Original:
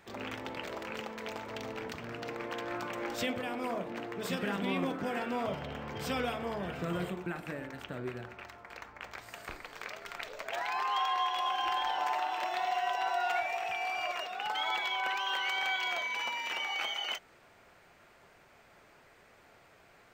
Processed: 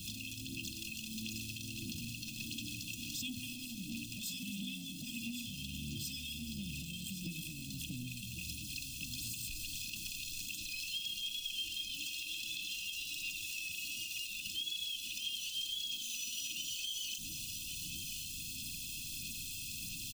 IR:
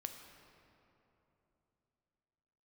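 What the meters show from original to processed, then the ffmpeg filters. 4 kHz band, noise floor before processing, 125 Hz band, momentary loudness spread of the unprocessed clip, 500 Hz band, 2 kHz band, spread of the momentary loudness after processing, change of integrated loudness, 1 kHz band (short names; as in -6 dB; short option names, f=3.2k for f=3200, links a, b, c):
+0.5 dB, -61 dBFS, -1.5 dB, 11 LU, under -30 dB, -8.5 dB, 5 LU, -5.0 dB, under -40 dB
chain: -filter_complex "[0:a]aeval=exprs='val(0)+0.5*0.00631*sgn(val(0))':c=same,afftfilt=real='re*(1-between(b*sr/4096,340,2500))':imag='im*(1-between(b*sr/4096,340,2500))':win_size=4096:overlap=0.75,highshelf=f=4.3k:g=5,bandreject=f=60:t=h:w=6,bandreject=f=120:t=h:w=6,aecho=1:1:1.2:0.73,acrossover=split=280|1700|3900[a][b][c][d];[a]acompressor=threshold=-42dB:ratio=4[e];[b]acompressor=threshold=-51dB:ratio=4[f];[c]acompressor=threshold=-48dB:ratio=4[g];[e][f][g][d]amix=inputs=4:normalize=0,alimiter=level_in=8dB:limit=-24dB:level=0:latency=1:release=68,volume=-8dB,acompressor=threshold=-43dB:ratio=4,asoftclip=type=tanh:threshold=-35dB,aphaser=in_gain=1:out_gain=1:delay=1.9:decay=0.4:speed=1.5:type=sinusoidal,aecho=1:1:1113:0.376,adynamicequalizer=threshold=0.00126:dfrequency=2400:dqfactor=0.7:tfrequency=2400:tqfactor=0.7:attack=5:release=100:ratio=0.375:range=3:mode=boostabove:tftype=highshelf"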